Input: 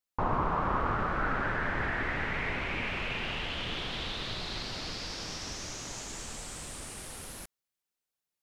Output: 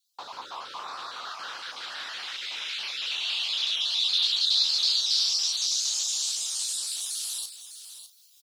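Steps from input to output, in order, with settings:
time-frequency cells dropped at random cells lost 24%
high-pass filter 1,300 Hz 12 dB per octave
reversed playback
upward compression, threshold −55 dBFS
reversed playback
frequency shifter −71 Hz
high shelf with overshoot 2,800 Hz +12 dB, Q 3
double-tracking delay 36 ms −10 dB
single-tap delay 605 ms −11.5 dB

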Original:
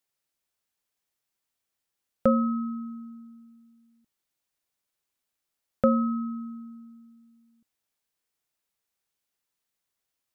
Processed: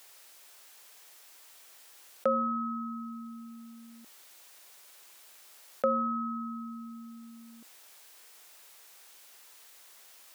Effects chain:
high-pass filter 470 Hz 12 dB per octave
envelope flattener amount 50%
level −3 dB

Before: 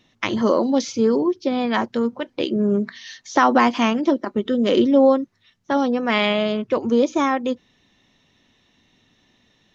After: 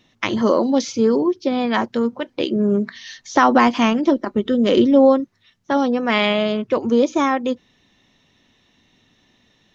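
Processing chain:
0:02.95–0:05.20: low-shelf EQ 77 Hz +11.5 dB
level +1.5 dB

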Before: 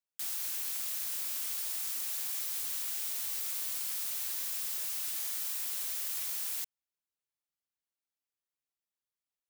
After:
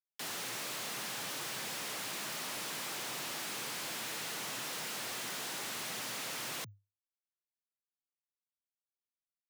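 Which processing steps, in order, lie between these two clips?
mid-hump overdrive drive 33 dB, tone 2,200 Hz, clips at −22.5 dBFS
comparator with hysteresis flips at −43 dBFS
frequency shifter +100 Hz

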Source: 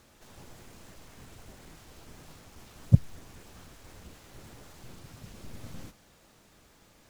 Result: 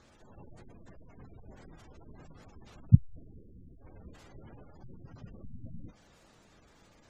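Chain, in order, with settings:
0:02.94–0:03.78: low-pass that shuts in the quiet parts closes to 360 Hz, open at −17 dBFS
gate on every frequency bin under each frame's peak −20 dB strong

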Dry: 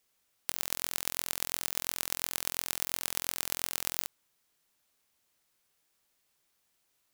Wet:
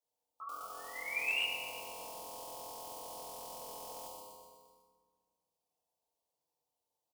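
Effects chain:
dynamic equaliser 400 Hz, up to +4 dB, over −57 dBFS, Q 0.86
sound drawn into the spectrogram rise, 0:00.40–0:01.42, 1,300–2,900 Hz −14 dBFS
pitch-shifted copies added −3 semitones −8 dB
output level in coarse steps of 24 dB
flat-topped bell 780 Hz +13.5 dB
on a send: repeating echo 124 ms, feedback 60%, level −15 dB
on the sum: brickwall limiter −25.5 dBFS, peak gain reduction 18 dB
Butterworth band-reject 1,600 Hz, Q 0.79
feedback delay network reverb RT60 1.6 s, low-frequency decay 1.3×, high-frequency decay 0.6×, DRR −6.5 dB
slew-rate limiting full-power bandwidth 120 Hz
level −1 dB

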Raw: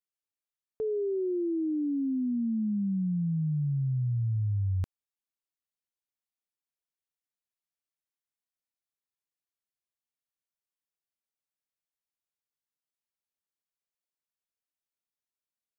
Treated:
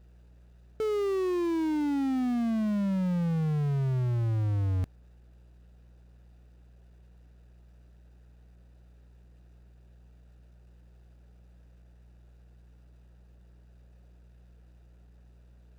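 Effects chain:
adaptive Wiener filter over 41 samples
power curve on the samples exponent 0.5
hum with harmonics 60 Hz, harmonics 3, −55 dBFS −9 dB per octave
windowed peak hold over 3 samples

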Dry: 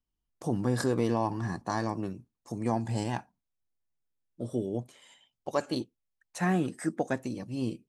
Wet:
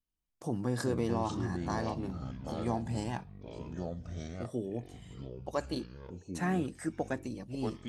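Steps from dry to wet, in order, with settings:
delay with pitch and tempo change per echo 225 ms, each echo −5 semitones, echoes 3, each echo −6 dB
level −4.5 dB

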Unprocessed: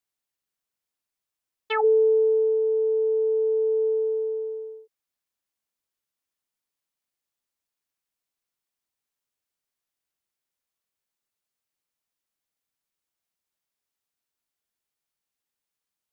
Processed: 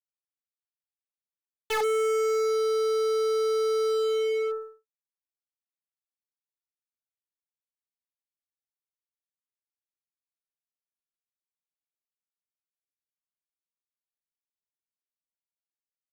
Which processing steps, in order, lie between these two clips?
hard clipping −28.5 dBFS, distortion −7 dB
power curve on the samples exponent 3
level +4.5 dB

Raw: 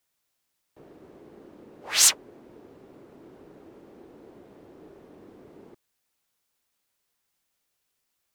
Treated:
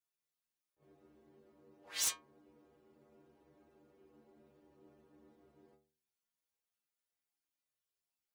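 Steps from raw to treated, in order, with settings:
stiff-string resonator 71 Hz, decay 0.57 s, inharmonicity 0.008
wrap-around overflow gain 17.5 dB
level that may rise only so fast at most 320 dB per second
level −5.5 dB

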